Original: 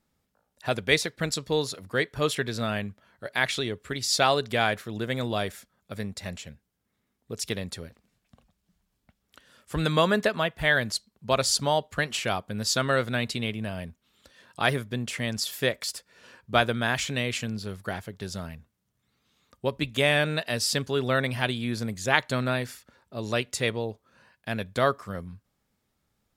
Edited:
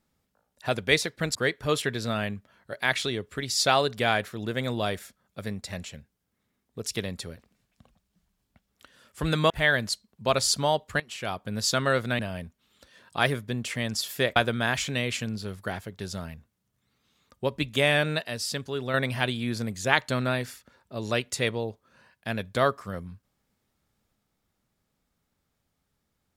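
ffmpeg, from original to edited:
-filter_complex "[0:a]asplit=8[a][b][c][d][e][f][g][h];[a]atrim=end=1.352[i];[b]atrim=start=1.878:end=10.032[j];[c]atrim=start=10.528:end=12.03,asetpts=PTS-STARTPTS,afade=t=out:st=1.498:d=0.004:c=hsin:silence=0.125893[k];[d]atrim=start=12.03:end=13.222,asetpts=PTS-STARTPTS,afade=t=in:d=0.5:silence=0.125893[l];[e]atrim=start=13.618:end=15.792[m];[f]atrim=start=16.568:end=20.452[n];[g]atrim=start=20.448:end=21.152,asetpts=PTS-STARTPTS,volume=-5dB[o];[h]atrim=start=21.148[p];[i][j]acrossfade=d=0.004:c1=hsin:c2=hsin[q];[k][l]concat=n=2:v=0:a=1[r];[q][r]acrossfade=d=0.004:c1=hsin:c2=hsin[s];[s][m]acrossfade=d=0.004:c1=hsin:c2=hsin[t];[t][n]acrossfade=d=0.004:c1=hsin:c2=hsin[u];[u][o]acrossfade=d=0.004:c1=hsin:c2=hsin[v];[v][p]acrossfade=d=0.004:c1=hsin:c2=hsin"

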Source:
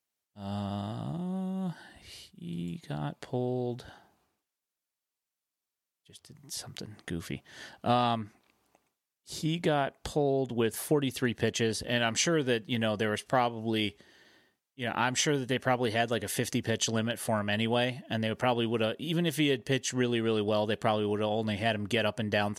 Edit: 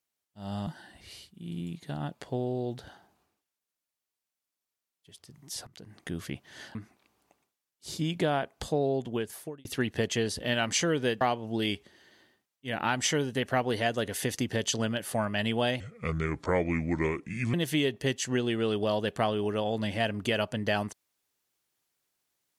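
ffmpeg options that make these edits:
-filter_complex "[0:a]asplit=8[a][b][c][d][e][f][g][h];[a]atrim=end=0.672[i];[b]atrim=start=1.678:end=6.68,asetpts=PTS-STARTPTS,afade=t=out:st=4.998:d=0.004:c=hsin:silence=0.133352[j];[c]atrim=start=6.68:end=7.762,asetpts=PTS-STARTPTS,afade=t=in:d=0.41:silence=0.133352[k];[d]atrim=start=8.188:end=11.09,asetpts=PTS-STARTPTS,afade=t=out:st=2.192:d=0.71[l];[e]atrim=start=11.09:end=12.652,asetpts=PTS-STARTPTS,afade=t=in:d=0.004:c=hsin[m];[f]atrim=start=13.348:end=17.944[n];[g]atrim=start=17.94:end=19.19,asetpts=PTS-STARTPTS,asetrate=31752,aresample=44100,atrim=end_sample=76562,asetpts=PTS-STARTPTS[o];[h]atrim=start=19.186[p];[j][k]concat=n=2:v=0:a=1[q];[i][q]acrossfade=d=0.004:c1=hsin:c2=hsin[r];[l][m]concat=n=2:v=0:a=1[s];[r][s]acrossfade=d=0.004:c1=hsin:c2=hsin[t];[t][n]acrossfade=d=0.004:c1=hsin:c2=hsin[u];[u][o]acrossfade=d=0.004:c1=hsin:c2=hsin[v];[v][p]acrossfade=d=0.004:c1=hsin:c2=hsin"

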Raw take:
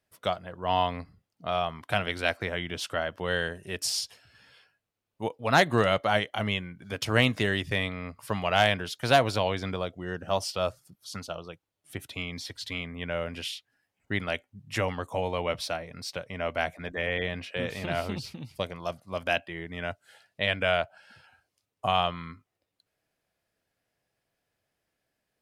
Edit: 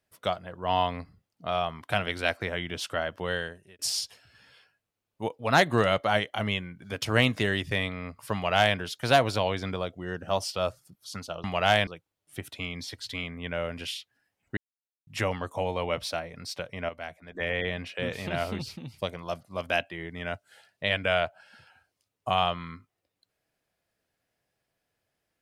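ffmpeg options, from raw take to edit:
-filter_complex "[0:a]asplit=8[a][b][c][d][e][f][g][h];[a]atrim=end=3.79,asetpts=PTS-STARTPTS,afade=t=out:st=3.22:d=0.57[i];[b]atrim=start=3.79:end=11.442,asetpts=PTS-STARTPTS,afade=t=in:d=0.004:c=hsin[j];[c]atrim=start=8.338:end=8.772[k];[d]atrim=start=11.438:end=14.14,asetpts=PTS-STARTPTS,afade=t=out:st=2.698:d=0.004:c=hsin[l];[e]atrim=start=14.14:end=14.64,asetpts=PTS-STARTPTS,volume=0[m];[f]atrim=start=14.64:end=16.462,asetpts=PTS-STARTPTS,afade=t=in:d=0.004:c=hsin[n];[g]atrim=start=16.458:end=16.922,asetpts=PTS-STARTPTS,volume=-10dB[o];[h]atrim=start=16.918[p];[i][j]concat=n=2:v=0:a=1[q];[q][k]acrossfade=d=0.004:c1=hsin:c2=hsin[r];[l][m][n]concat=n=3:v=0:a=1[s];[r][s]acrossfade=d=0.004:c1=hsin:c2=hsin[t];[t][o]acrossfade=d=0.004:c1=hsin:c2=hsin[u];[u][p]acrossfade=d=0.004:c1=hsin:c2=hsin"

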